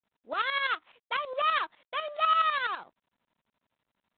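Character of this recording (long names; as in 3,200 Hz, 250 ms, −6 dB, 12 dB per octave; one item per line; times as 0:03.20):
a buzz of ramps at a fixed pitch in blocks of 8 samples
tremolo saw up 12 Hz, depth 70%
G.726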